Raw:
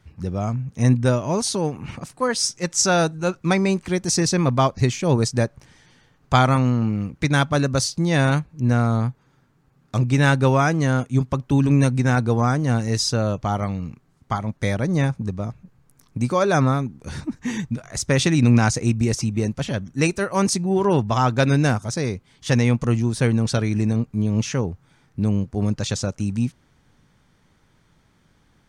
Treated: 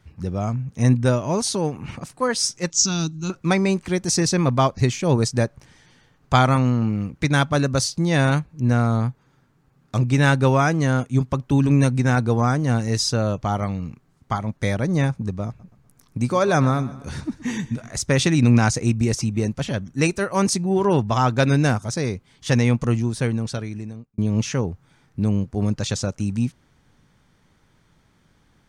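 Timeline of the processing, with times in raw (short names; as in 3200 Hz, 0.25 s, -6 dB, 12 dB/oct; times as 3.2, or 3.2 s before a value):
2.7–3.3 EQ curve 300 Hz 0 dB, 530 Hz -24 dB, 1200 Hz -7 dB, 1700 Hz -18 dB, 2900 Hz -2 dB, 6900 Hz +3 dB, 10000 Hz -24 dB
15.47–17.92 feedback echo 0.124 s, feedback 47%, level -17.5 dB
22.84–24.18 fade out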